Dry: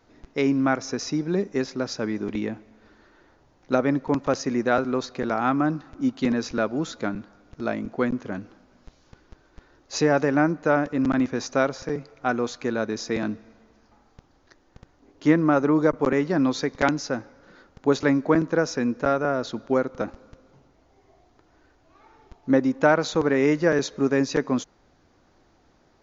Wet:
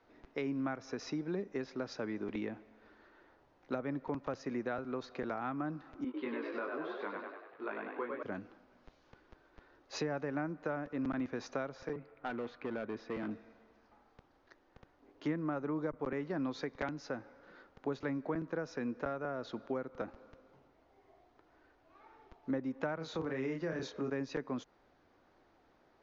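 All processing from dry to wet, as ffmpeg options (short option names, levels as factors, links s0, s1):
-filter_complex "[0:a]asettb=1/sr,asplit=3[s0][s1][s2];[s0]atrim=end=6.044[s3];[s1]atrim=start=6.04:end=8.23,asetpts=PTS-STARTPTS,afade=t=in:d=0.004:c=qsin,afade=t=out:st=2.186:d=0.004:c=qsin,highpass=330,equalizer=f=390:t=q:w=4:g=4,equalizer=f=680:t=q:w=4:g=-10,equalizer=f=1000:t=q:w=4:g=8,lowpass=f=3400:w=0.5412,lowpass=f=3400:w=1.3066,flanger=delay=19.5:depth=2.6:speed=1.2,asplit=9[s4][s5][s6][s7][s8][s9][s10][s11][s12];[s5]adelay=97,afreqshift=51,volume=0.631[s13];[s6]adelay=194,afreqshift=102,volume=0.355[s14];[s7]adelay=291,afreqshift=153,volume=0.197[s15];[s8]adelay=388,afreqshift=204,volume=0.111[s16];[s9]adelay=485,afreqshift=255,volume=0.0624[s17];[s10]adelay=582,afreqshift=306,volume=0.0347[s18];[s11]adelay=679,afreqshift=357,volume=0.0195[s19];[s12]adelay=776,afreqshift=408,volume=0.0108[s20];[s4][s13][s14][s15][s16][s17][s18][s19][s20]amix=inputs=9:normalize=0,atrim=end_sample=96579[s21];[s2]atrim=start=8.226[s22];[s3][s21]acrossfade=d=0.004:c1=hsin:c2=qsin[s23];[s23][s22]acrossfade=d=0.004:c1=qsin:c2=hsin,asettb=1/sr,asplit=3[s24][s25][s26];[s24]atrim=end=11.934[s27];[s25]atrim=start=11.93:end=13.31,asetpts=PTS-STARTPTS,afade=t=in:d=0.004:c=qsin,afade=t=out:st=1.376:d=0.004:c=qsin,lowpass=2400,equalizer=f=790:t=o:w=1.7:g=-4,asoftclip=type=hard:threshold=0.0596[s28];[s26]atrim=start=13.306[s29];[s27][s28]acrossfade=d=0.004:c1=hsin:c2=qsin[s30];[s30][s29]acrossfade=d=0.004:c1=qsin:c2=hsin,asettb=1/sr,asplit=3[s31][s32][s33];[s31]atrim=end=22.964[s34];[s32]atrim=start=22.96:end=24.1,asetpts=PTS-STARTPTS,afade=t=in:d=0.004:c=qsin,afade=t=out:st=1.136:d=0.004:c=qsin,highpass=42,asplit=2[s35][s36];[s36]adelay=31,volume=0.596[s37];[s35][s37]amix=inputs=2:normalize=0,atrim=end_sample=50274,acrossover=split=270|3000[s38][s39][s40];[s39]acompressor=threshold=0.0282:ratio=1.5:attack=3.2:release=140:knee=2.83:detection=peak[s41];[s38][s41][s40]amix=inputs=3:normalize=0[s42];[s33]atrim=start=24.096[s43];[s34][s42]acrossfade=d=0.004:c1=hsin:c2=qsin[s44];[s44][s43]acrossfade=d=0.004:c1=qsin:c2=hsin,lowpass=5600,bass=f=250:g=-8,treble=f=4000:g=-8,acrossover=split=170[s45][s46];[s46]acompressor=threshold=0.0282:ratio=5[s47];[s45][s47]amix=inputs=2:normalize=0,volume=0.562"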